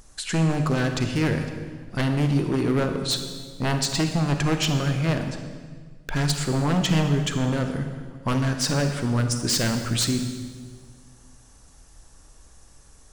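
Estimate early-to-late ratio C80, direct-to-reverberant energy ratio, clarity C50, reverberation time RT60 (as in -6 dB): 8.0 dB, 5.5 dB, 6.5 dB, 1.6 s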